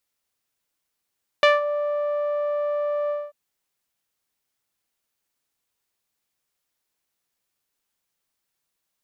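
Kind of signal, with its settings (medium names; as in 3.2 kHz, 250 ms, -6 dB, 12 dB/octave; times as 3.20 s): synth note saw D5 12 dB/octave, low-pass 820 Hz, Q 1.5, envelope 2 oct, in 0.22 s, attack 1 ms, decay 0.17 s, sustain -12 dB, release 0.22 s, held 1.67 s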